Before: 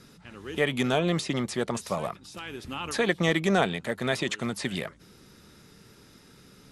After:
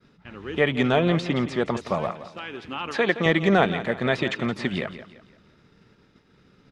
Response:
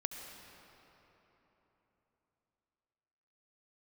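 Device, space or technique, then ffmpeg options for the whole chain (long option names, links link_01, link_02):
hearing-loss simulation: -filter_complex "[0:a]asettb=1/sr,asplit=3[link_01][link_02][link_03];[link_01]atrim=end=2.104[link_04];[link_02]atrim=start=2.1:end=3.26,asetpts=PTS-STARTPTS,afade=type=in:duration=0.004:curve=qsin,afade=type=out:start_time=1.156:duration=0.004:curve=qsin,highpass=frequency=270:poles=1[link_05];[link_03]atrim=start=3.256[link_06];[link_04][link_05]acrossfade=duration=0.004:curve1=hsin:curve2=qsin[link_07];[link_07][link_06]acrossfade=duration=0.004:curve1=qsin:curve2=hsin,lowpass=3200,agate=range=-33dB:threshold=-47dB:ratio=3:detection=peak,aecho=1:1:170|340|510|680:0.224|0.0828|0.0306|0.0113,volume=4.5dB"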